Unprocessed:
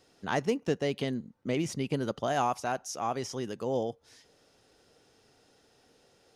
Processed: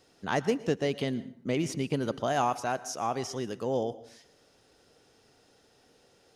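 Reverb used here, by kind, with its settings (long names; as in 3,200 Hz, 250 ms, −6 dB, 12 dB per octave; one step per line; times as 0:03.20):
dense smooth reverb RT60 0.56 s, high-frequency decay 0.75×, pre-delay 100 ms, DRR 16 dB
level +1 dB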